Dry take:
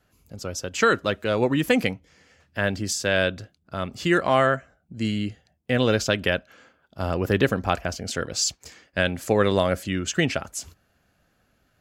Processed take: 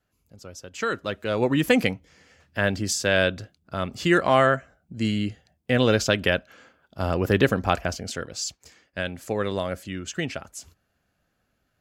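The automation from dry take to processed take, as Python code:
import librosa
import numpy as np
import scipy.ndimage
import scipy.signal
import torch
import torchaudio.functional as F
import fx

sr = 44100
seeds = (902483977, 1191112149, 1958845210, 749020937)

y = fx.gain(x, sr, db=fx.line((0.65, -10.0), (1.59, 1.0), (7.9, 1.0), (8.33, -6.5)))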